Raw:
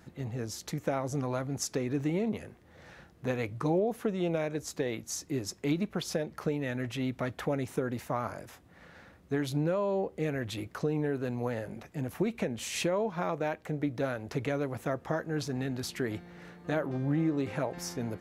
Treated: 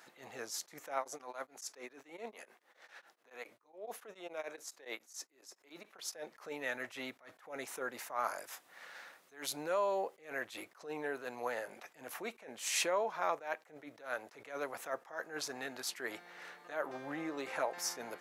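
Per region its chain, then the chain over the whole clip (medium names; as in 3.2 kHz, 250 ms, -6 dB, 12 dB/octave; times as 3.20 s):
0.98–6.16 s: high-pass 210 Hz + tremolo of two beating tones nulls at 7.1 Hz
8.24–10.16 s: high-pass 54 Hz + treble shelf 4.6 kHz +6.5 dB
whole clip: high-pass 770 Hz 12 dB/octave; dynamic bell 3.1 kHz, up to -4 dB, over -54 dBFS, Q 1.2; attacks held to a fixed rise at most 160 dB/s; trim +3.5 dB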